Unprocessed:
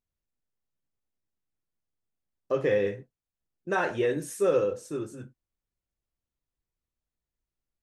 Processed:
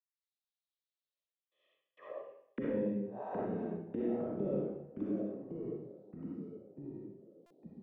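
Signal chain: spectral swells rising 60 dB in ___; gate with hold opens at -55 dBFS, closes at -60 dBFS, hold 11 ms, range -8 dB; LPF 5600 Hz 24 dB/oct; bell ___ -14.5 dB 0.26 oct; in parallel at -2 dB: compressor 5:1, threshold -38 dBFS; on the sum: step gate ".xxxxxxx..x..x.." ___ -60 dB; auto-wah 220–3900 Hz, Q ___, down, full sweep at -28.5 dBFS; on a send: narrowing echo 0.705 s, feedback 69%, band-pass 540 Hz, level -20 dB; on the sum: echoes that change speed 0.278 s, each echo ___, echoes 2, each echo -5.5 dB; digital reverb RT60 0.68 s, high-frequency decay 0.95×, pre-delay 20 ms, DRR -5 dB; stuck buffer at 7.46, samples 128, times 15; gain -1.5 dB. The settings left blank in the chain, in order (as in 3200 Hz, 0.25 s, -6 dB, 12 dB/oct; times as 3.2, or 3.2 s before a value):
1.48 s, 1400 Hz, 99 bpm, 5.1, -3 st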